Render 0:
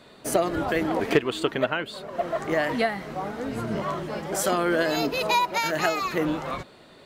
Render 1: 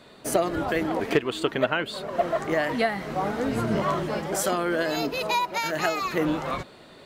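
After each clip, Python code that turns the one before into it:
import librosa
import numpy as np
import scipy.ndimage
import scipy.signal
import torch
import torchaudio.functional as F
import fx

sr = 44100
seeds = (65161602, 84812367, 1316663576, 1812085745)

y = fx.rider(x, sr, range_db=5, speed_s=0.5)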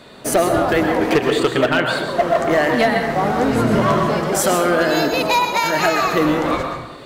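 y = fx.rev_plate(x, sr, seeds[0], rt60_s=0.9, hf_ratio=0.5, predelay_ms=105, drr_db=4.0)
y = np.clip(10.0 ** (17.0 / 20.0) * y, -1.0, 1.0) / 10.0 ** (17.0 / 20.0)
y = y * librosa.db_to_amplitude(8.0)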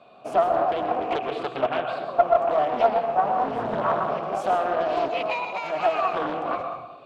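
y = fx.vowel_filter(x, sr, vowel='a')
y = fx.bass_treble(y, sr, bass_db=12, treble_db=0)
y = fx.doppler_dist(y, sr, depth_ms=0.45)
y = y * librosa.db_to_amplitude(1.5)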